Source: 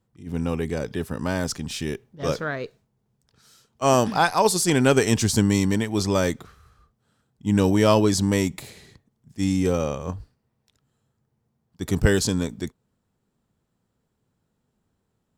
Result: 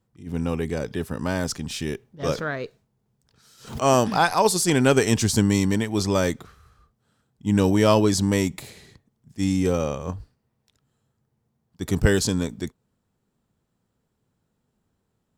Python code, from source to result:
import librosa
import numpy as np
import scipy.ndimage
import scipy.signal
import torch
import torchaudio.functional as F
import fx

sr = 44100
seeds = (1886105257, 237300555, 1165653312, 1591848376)

y = fx.pre_swell(x, sr, db_per_s=130.0, at=(2.23, 4.37))